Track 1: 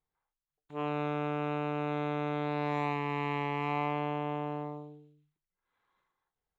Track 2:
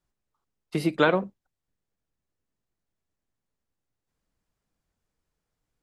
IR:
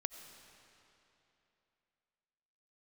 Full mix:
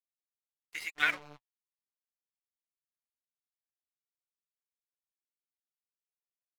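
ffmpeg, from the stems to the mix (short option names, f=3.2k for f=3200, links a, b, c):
-filter_complex "[0:a]adelay=200,volume=-8.5dB,asplit=2[a][b];[b]volume=-20.5dB[c];[1:a]highpass=f=2k:t=q:w=4.6,volume=-2dB,asplit=3[d][e][f];[e]volume=-17dB[g];[f]apad=whole_len=299220[h];[a][h]sidechaingate=range=-33dB:threshold=-56dB:ratio=16:detection=peak[i];[2:a]atrim=start_sample=2205[j];[c][g]amix=inputs=2:normalize=0[k];[k][j]afir=irnorm=-1:irlink=0[l];[i][d][l]amix=inputs=3:normalize=0,aeval=exprs='sgn(val(0))*max(abs(val(0))-0.0119,0)':c=same,flanger=delay=2.7:depth=7:regen=35:speed=0.97:shape=sinusoidal"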